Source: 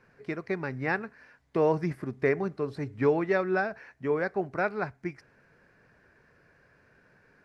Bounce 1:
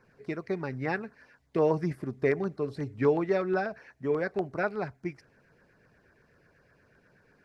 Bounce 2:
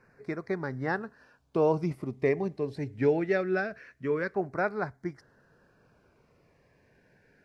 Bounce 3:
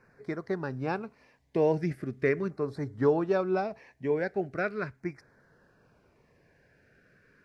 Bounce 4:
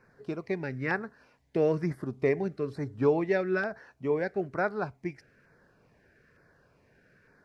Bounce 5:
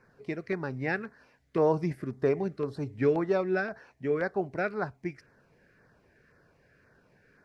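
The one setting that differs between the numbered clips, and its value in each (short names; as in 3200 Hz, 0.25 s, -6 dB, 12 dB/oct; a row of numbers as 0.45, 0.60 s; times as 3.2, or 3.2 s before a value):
LFO notch, rate: 8.2, 0.23, 0.4, 1.1, 1.9 Hz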